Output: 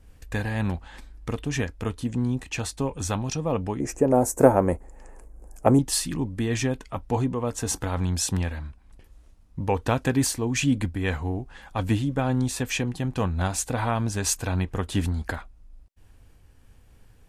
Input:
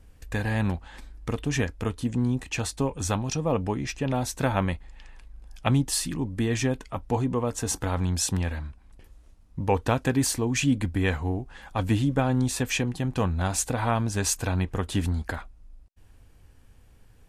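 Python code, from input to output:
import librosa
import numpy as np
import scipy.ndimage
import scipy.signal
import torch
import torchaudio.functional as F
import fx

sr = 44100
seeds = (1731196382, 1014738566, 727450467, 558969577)

y = fx.curve_eq(x, sr, hz=(150.0, 450.0, 2200.0, 3600.0, 7200.0), db=(0, 14, -7, -21, 8), at=(3.8, 5.79))
y = fx.am_noise(y, sr, seeds[0], hz=5.7, depth_pct=50)
y = F.gain(torch.from_numpy(y), 2.5).numpy()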